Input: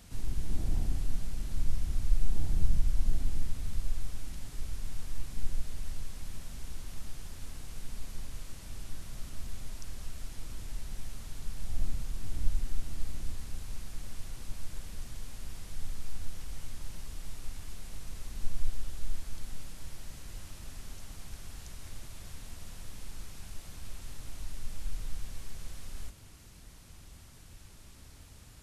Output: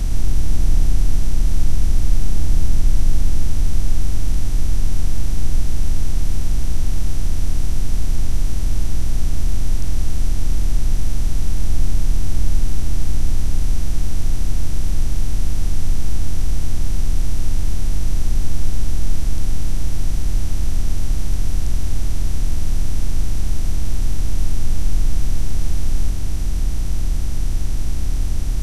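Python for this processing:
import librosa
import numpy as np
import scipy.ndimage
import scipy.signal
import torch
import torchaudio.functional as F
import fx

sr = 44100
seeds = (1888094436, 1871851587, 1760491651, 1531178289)

y = fx.bin_compress(x, sr, power=0.2)
y = y * librosa.db_to_amplitude(6.0)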